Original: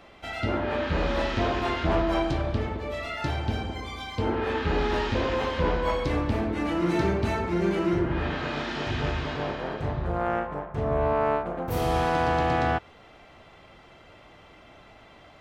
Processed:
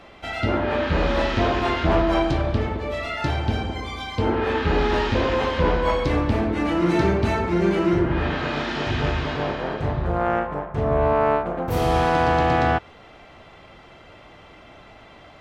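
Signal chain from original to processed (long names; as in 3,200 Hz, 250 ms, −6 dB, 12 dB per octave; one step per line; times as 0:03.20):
high-shelf EQ 10,000 Hz −6.5 dB
level +5 dB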